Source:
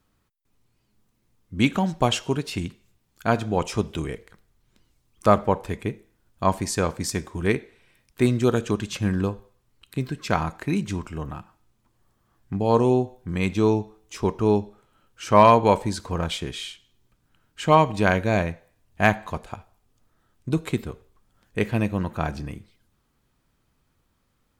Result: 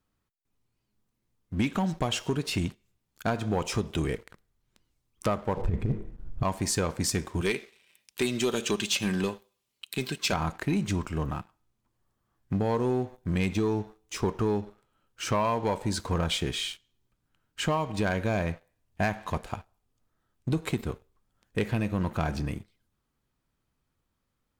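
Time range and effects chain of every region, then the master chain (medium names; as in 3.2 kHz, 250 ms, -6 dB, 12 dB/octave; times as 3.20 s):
5.57–6.43 s: compressor with a negative ratio -30 dBFS, ratio -0.5 + tilt EQ -4.5 dB/octave
7.41–10.33 s: high-pass 340 Hz 6 dB/octave + resonant high shelf 2.1 kHz +6.5 dB, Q 1.5 + comb 5.1 ms, depth 32%
whole clip: compression 12:1, threshold -23 dBFS; waveshaping leveller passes 2; trim -5.5 dB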